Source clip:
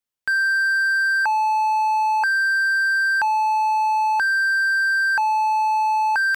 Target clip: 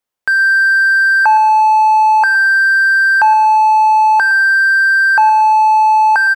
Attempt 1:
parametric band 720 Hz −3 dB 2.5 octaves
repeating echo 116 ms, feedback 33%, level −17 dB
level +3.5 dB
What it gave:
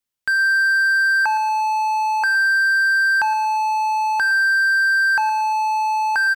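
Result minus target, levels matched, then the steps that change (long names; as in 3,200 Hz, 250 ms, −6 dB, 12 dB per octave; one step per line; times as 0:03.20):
1,000 Hz band −3.0 dB
change: parametric band 720 Hz +8 dB 2.5 octaves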